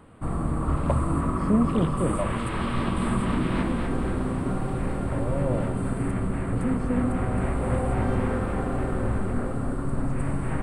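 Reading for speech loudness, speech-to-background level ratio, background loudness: -29.0 LUFS, -1.5 dB, -27.5 LUFS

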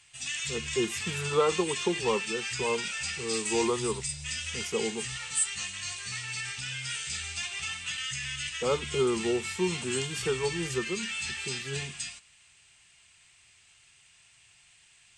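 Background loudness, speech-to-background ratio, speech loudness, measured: -33.0 LUFS, 1.0 dB, -32.0 LUFS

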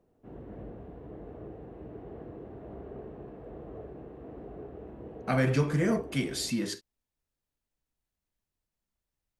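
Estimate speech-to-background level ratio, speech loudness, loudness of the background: 16.0 dB, -29.5 LUFS, -45.5 LUFS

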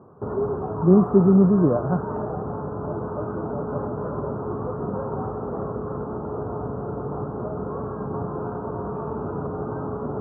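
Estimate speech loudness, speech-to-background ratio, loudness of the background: -18.5 LUFS, 11.0 dB, -29.5 LUFS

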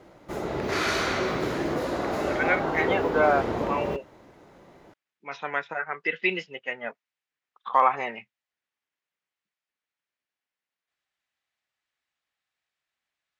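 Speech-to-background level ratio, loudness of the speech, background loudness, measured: 1.0 dB, -27.0 LUFS, -28.0 LUFS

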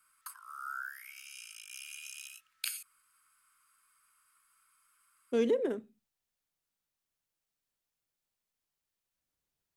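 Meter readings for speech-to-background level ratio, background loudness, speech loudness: 11.0 dB, -43.0 LUFS, -32.0 LUFS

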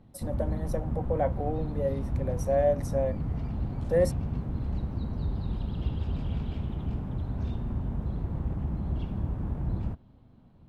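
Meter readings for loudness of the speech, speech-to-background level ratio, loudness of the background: -30.5 LUFS, 3.0 dB, -33.5 LUFS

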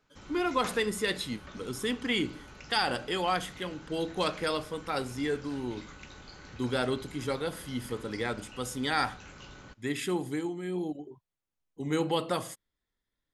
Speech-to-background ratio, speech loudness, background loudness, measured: 16.0 dB, -32.5 LUFS, -48.5 LUFS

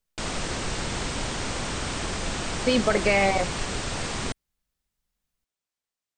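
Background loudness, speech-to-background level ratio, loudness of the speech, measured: -30.0 LUFS, 6.5 dB, -23.5 LUFS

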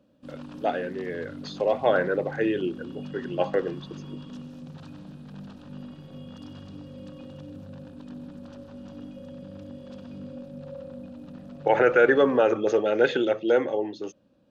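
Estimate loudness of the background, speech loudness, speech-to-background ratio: -41.5 LUFS, -24.5 LUFS, 17.0 dB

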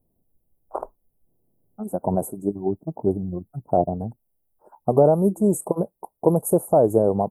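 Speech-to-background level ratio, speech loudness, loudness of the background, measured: 13.5 dB, -22.5 LUFS, -36.0 LUFS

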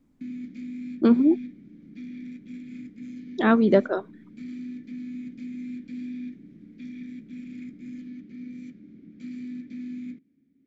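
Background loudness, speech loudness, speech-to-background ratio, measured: -39.0 LUFS, -22.0 LUFS, 17.0 dB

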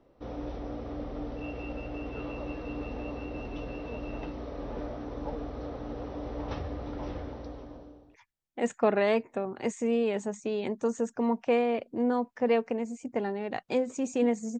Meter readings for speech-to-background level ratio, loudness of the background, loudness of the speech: 9.0 dB, -38.5 LUFS, -29.5 LUFS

